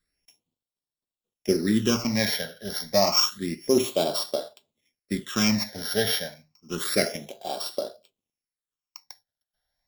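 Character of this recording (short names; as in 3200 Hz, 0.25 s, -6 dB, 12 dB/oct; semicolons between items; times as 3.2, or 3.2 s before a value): a buzz of ramps at a fixed pitch in blocks of 8 samples; phasing stages 8, 0.29 Hz, lowest notch 320–2100 Hz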